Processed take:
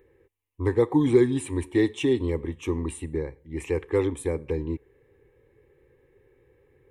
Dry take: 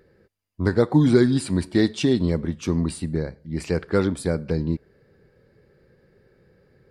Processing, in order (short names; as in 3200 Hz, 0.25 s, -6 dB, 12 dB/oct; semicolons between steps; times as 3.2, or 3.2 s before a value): fixed phaser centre 960 Hz, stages 8